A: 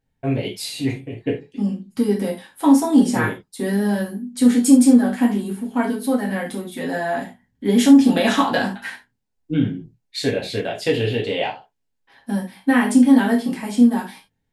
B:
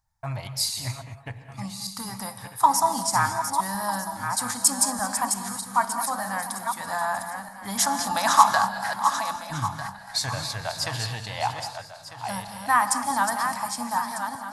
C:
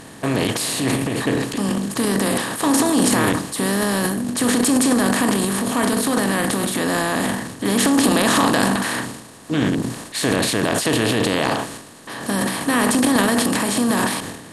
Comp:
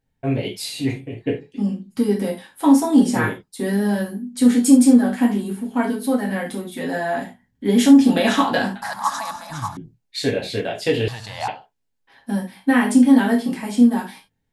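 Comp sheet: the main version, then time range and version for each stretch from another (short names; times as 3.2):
A
8.82–9.77 from B
11.08–11.48 from B
not used: C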